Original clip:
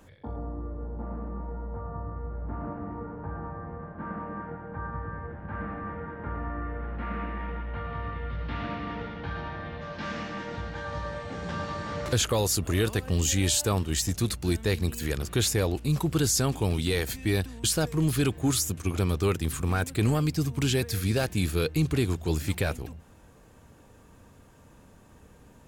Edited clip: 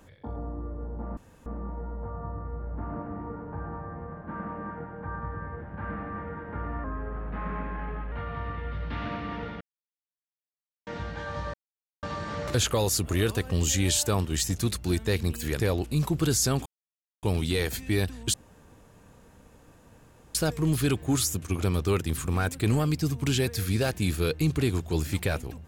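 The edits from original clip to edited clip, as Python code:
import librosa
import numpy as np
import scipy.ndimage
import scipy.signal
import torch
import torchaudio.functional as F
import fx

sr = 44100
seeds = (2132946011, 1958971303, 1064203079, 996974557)

y = fx.edit(x, sr, fx.insert_room_tone(at_s=1.17, length_s=0.29),
    fx.speed_span(start_s=6.55, length_s=1.15, speed=0.9),
    fx.silence(start_s=9.19, length_s=1.26),
    fx.silence(start_s=11.12, length_s=0.49),
    fx.cut(start_s=15.18, length_s=0.35),
    fx.insert_silence(at_s=16.59, length_s=0.57),
    fx.insert_room_tone(at_s=17.7, length_s=2.01), tone=tone)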